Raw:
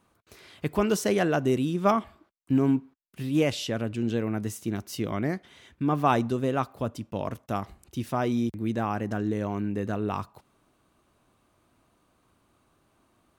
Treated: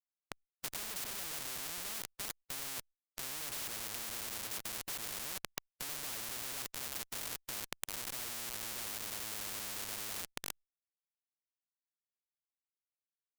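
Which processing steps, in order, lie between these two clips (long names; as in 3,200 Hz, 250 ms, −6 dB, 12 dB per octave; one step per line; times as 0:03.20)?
feedback echo with a high-pass in the loop 341 ms, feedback 32%, high-pass 560 Hz, level −16 dB
comparator with hysteresis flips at −38.5 dBFS
every bin compressed towards the loudest bin 10 to 1
level +8.5 dB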